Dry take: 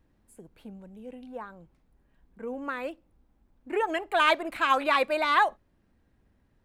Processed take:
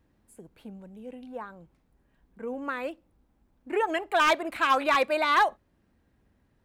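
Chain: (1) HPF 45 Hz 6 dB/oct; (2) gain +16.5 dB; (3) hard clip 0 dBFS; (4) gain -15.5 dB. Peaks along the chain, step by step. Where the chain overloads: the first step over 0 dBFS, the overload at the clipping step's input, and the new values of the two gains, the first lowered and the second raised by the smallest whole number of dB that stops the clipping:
-8.5, +8.0, 0.0, -15.5 dBFS; step 2, 8.0 dB; step 2 +8.5 dB, step 4 -7.5 dB

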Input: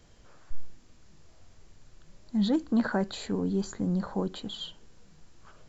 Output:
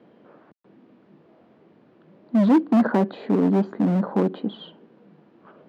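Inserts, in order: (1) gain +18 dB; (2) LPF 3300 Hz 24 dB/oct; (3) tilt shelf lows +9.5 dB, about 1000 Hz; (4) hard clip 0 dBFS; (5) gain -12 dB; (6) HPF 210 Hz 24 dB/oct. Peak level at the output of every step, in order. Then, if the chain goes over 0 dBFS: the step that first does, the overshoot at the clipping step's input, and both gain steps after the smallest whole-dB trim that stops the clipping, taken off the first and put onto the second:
+2.0, +2.0, +9.5, 0.0, -12.0, -8.5 dBFS; step 1, 9.5 dB; step 1 +8 dB, step 5 -2 dB

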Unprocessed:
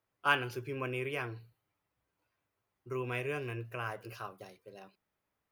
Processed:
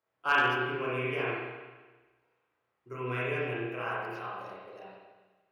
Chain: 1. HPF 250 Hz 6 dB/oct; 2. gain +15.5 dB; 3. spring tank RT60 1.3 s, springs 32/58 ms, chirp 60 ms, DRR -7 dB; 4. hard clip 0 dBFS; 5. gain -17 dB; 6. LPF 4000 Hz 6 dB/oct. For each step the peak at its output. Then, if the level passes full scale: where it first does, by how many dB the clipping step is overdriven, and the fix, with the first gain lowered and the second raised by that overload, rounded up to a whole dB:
-13.5, +2.0, +4.5, 0.0, -17.0, -17.0 dBFS; step 2, 4.5 dB; step 2 +10.5 dB, step 5 -12 dB

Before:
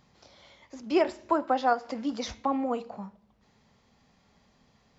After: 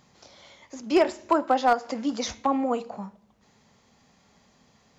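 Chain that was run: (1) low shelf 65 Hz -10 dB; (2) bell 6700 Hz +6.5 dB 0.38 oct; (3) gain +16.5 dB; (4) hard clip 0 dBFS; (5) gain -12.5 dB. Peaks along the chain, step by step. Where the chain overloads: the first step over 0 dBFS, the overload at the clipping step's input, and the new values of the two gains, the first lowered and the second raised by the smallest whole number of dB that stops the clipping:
-13.0, -13.0, +3.5, 0.0, -12.5 dBFS; step 3, 3.5 dB; step 3 +12.5 dB, step 5 -8.5 dB

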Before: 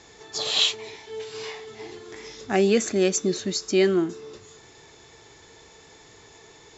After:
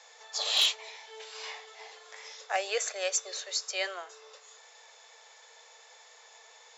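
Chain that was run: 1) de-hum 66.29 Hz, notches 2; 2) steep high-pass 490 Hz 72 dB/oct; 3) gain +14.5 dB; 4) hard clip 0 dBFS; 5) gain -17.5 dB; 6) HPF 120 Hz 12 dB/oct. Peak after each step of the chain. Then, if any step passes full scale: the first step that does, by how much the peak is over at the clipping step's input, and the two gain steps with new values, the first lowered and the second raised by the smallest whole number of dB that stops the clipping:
-7.5, -8.0, +6.5, 0.0, -17.5, -17.0 dBFS; step 3, 6.5 dB; step 3 +7.5 dB, step 5 -10.5 dB

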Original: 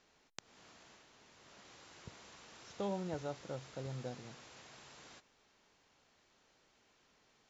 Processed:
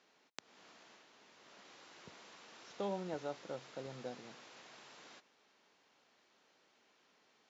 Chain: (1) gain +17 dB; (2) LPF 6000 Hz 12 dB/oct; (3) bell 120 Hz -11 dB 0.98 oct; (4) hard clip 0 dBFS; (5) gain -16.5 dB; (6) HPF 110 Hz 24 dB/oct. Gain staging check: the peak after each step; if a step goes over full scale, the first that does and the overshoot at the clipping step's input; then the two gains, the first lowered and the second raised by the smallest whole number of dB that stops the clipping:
-3.0, -4.0, -4.5, -4.5, -21.0, -22.0 dBFS; no overload

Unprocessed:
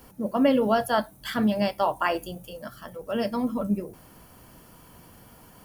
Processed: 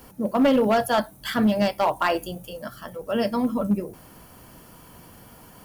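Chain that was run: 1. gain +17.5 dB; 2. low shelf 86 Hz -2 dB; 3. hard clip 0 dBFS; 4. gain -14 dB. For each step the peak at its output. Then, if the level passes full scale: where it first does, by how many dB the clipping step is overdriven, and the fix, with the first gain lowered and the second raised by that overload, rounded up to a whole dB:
+7.5, +7.5, 0.0, -14.0 dBFS; step 1, 7.5 dB; step 1 +9.5 dB, step 4 -6 dB

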